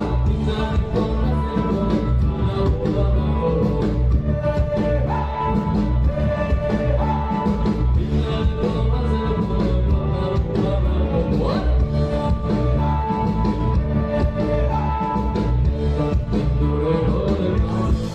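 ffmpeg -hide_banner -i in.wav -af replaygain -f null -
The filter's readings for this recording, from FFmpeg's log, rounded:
track_gain = +4.7 dB
track_peak = 0.298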